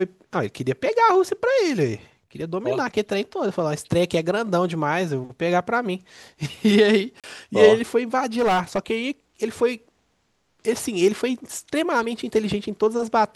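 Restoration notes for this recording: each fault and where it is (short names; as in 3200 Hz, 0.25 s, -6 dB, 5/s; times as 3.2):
7.2–7.24 gap 37 ms
8.39–8.78 clipped -16 dBFS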